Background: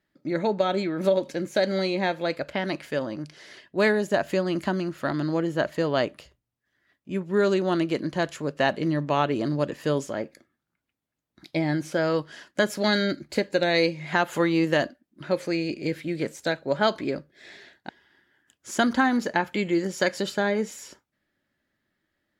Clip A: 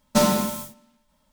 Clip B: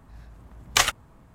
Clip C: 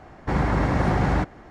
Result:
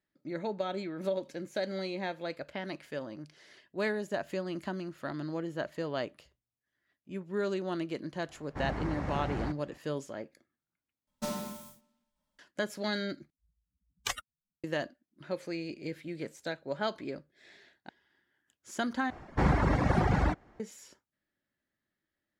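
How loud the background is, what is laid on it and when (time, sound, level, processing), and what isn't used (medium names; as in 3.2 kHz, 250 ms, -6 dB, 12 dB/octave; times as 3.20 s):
background -10.5 dB
8.28 s: add C -14 dB
11.07 s: replace with A -17 dB
13.30 s: replace with B -12 dB + expander on every frequency bin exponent 3
19.10 s: replace with C -2 dB + reverb removal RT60 1.6 s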